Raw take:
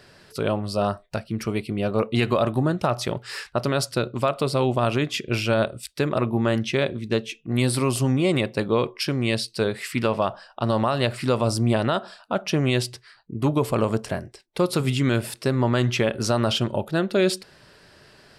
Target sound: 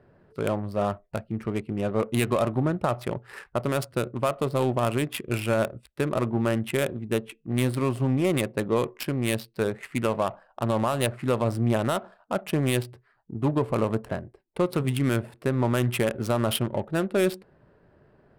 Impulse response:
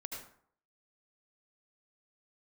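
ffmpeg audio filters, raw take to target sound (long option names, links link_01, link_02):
-af "adynamicsmooth=sensitivity=2.5:basefreq=900,highshelf=frequency=7500:width_type=q:width=1.5:gain=9.5,volume=-2.5dB"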